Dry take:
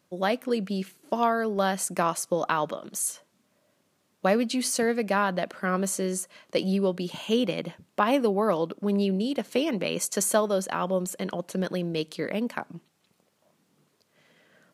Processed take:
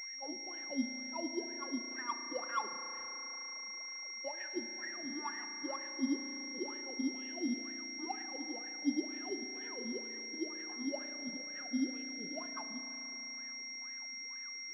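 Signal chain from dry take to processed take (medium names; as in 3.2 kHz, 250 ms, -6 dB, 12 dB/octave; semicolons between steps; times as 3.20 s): expander on every frequency bin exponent 2; bass shelf 130 Hz +9 dB; peak limiter -20.5 dBFS, peak gain reduction 8.5 dB; transient shaper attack -7 dB, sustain +8 dB; compression 20:1, threshold -34 dBFS, peak gain reduction 11.5 dB; added noise white -52 dBFS; LFO notch sine 0.34 Hz 350–1900 Hz; formant-preserving pitch shift +6.5 st; wah-wah 2.1 Hz 230–1900 Hz, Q 14; whistle 2.1 kHz -57 dBFS; reverberation RT60 4.3 s, pre-delay 35 ms, DRR 8 dB; class-D stage that switches slowly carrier 5.6 kHz; trim +12.5 dB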